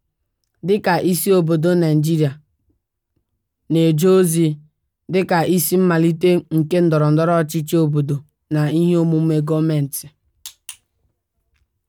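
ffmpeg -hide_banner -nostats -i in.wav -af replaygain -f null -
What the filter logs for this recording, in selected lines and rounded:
track_gain = -1.3 dB
track_peak = 0.399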